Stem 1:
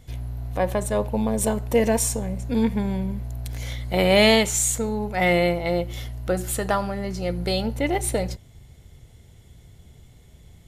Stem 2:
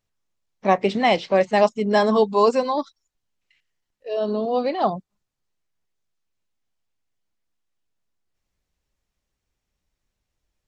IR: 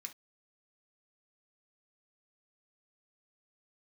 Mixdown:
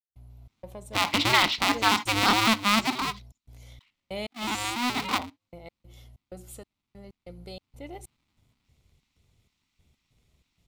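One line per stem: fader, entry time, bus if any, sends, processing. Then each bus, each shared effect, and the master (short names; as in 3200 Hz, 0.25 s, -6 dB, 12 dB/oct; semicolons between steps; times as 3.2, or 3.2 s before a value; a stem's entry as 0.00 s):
-17.5 dB, 0.00 s, no send, step gate ".xx.xx..x" 95 bpm -60 dB
2.07 s -4.5 dB -> 2.82 s -12.5 dB -> 7.39 s -12.5 dB -> 8.02 s -3 dB, 0.30 s, send -4.5 dB, cycle switcher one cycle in 2, inverted; graphic EQ 250/500/1000/2000/4000 Hz +9/-11/+6/+10/+10 dB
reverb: on, pre-delay 3 ms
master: bell 1700 Hz -11.5 dB 0.34 oct; limiter -8 dBFS, peak gain reduction 11.5 dB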